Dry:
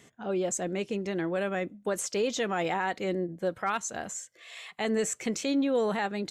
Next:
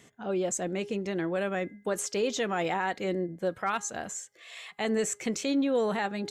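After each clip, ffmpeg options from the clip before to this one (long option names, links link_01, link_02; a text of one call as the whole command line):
ffmpeg -i in.wav -af "bandreject=frequency=411:width_type=h:width=4,bandreject=frequency=822:width_type=h:width=4,bandreject=frequency=1233:width_type=h:width=4,bandreject=frequency=1644:width_type=h:width=4,bandreject=frequency=2055:width_type=h:width=4" out.wav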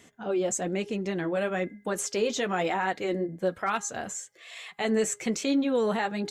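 ffmpeg -i in.wav -af "flanger=delay=2.8:depth=6.7:regen=-42:speed=1.1:shape=triangular,volume=5.5dB" out.wav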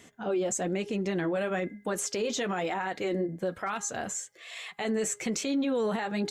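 ffmpeg -i in.wav -af "alimiter=limit=-23.5dB:level=0:latency=1:release=47,volume=1.5dB" out.wav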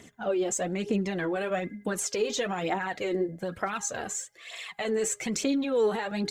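ffmpeg -i in.wav -af "aphaser=in_gain=1:out_gain=1:delay=2.7:decay=0.51:speed=1.1:type=triangular" out.wav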